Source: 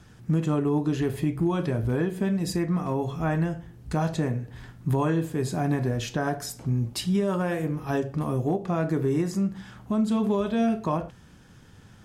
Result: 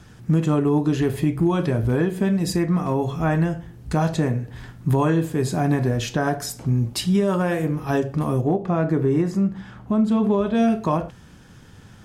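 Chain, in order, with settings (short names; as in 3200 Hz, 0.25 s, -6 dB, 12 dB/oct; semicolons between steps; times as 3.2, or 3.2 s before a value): 8.41–10.55 high shelf 3700 Hz -11.5 dB; gain +5 dB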